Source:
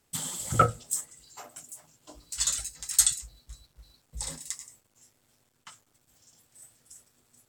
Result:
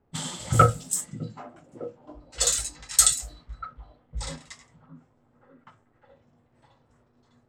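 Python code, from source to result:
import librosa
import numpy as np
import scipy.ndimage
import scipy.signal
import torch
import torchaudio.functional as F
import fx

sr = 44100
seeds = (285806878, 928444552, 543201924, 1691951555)

y = fx.echo_stepped(x, sr, ms=606, hz=220.0, octaves=0.7, feedback_pct=70, wet_db=-6)
y = fx.env_lowpass(y, sr, base_hz=880.0, full_db=-27.0)
y = fx.hpss(y, sr, part='harmonic', gain_db=6)
y = F.gain(torch.from_numpy(y), 2.5).numpy()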